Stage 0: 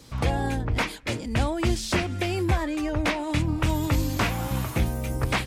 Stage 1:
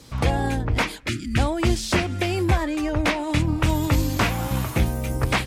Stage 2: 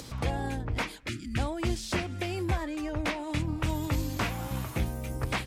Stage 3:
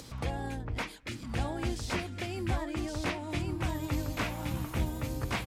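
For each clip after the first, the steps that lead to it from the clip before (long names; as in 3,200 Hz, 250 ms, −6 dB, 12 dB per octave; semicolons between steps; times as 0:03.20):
harmonic generator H 7 −36 dB, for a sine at −10.5 dBFS; gain on a spectral selection 0:01.08–0:01.37, 400–1,200 Hz −27 dB; level +3.5 dB
upward compression, threshold −25 dBFS; level −9 dB
single-tap delay 1,115 ms −3.5 dB; level −4 dB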